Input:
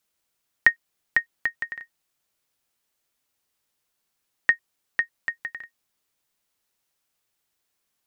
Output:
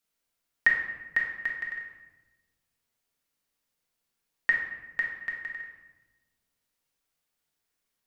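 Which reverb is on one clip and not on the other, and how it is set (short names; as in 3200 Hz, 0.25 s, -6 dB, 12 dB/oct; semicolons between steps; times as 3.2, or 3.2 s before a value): shoebox room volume 620 m³, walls mixed, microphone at 1.7 m; gain -7.5 dB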